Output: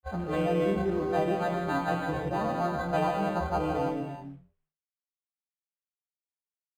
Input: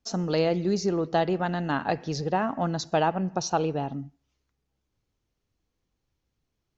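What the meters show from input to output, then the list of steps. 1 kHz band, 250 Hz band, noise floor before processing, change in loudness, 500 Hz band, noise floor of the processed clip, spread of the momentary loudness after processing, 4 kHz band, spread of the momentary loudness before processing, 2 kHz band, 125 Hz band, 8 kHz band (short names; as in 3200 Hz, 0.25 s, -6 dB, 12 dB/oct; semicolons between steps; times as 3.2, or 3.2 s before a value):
-1.5 dB, -2.5 dB, -80 dBFS, -2.0 dB, -1.5 dB, under -85 dBFS, 5 LU, -9.0 dB, 5 LU, -1.0 dB, -3.0 dB, n/a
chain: frequency quantiser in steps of 2 st; gate -36 dBFS, range -7 dB; high shelf 6100 Hz -8 dB; in parallel at -3 dB: limiter -18.5 dBFS, peak gain reduction 6.5 dB; on the sum: companded quantiser 6-bit; on a send: frequency-shifting echo 0.104 s, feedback 41%, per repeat -98 Hz, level -22 dB; on the sum: non-linear reverb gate 0.38 s flat, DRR 0 dB; decimation joined by straight lines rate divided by 8×; gain -8.5 dB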